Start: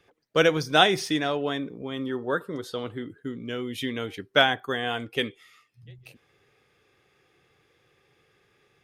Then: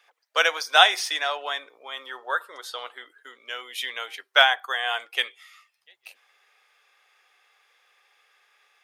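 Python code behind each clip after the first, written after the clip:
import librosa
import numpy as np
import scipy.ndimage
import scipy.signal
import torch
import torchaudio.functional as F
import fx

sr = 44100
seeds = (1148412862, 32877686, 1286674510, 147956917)

y = scipy.signal.sosfilt(scipy.signal.butter(4, 720.0, 'highpass', fs=sr, output='sos'), x)
y = F.gain(torch.from_numpy(y), 4.5).numpy()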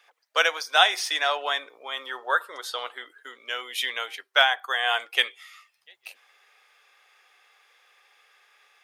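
y = fx.rider(x, sr, range_db=3, speed_s=0.5)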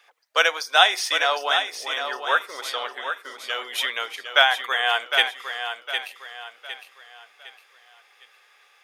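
y = fx.echo_feedback(x, sr, ms=758, feedback_pct=37, wet_db=-8)
y = F.gain(torch.from_numpy(y), 2.5).numpy()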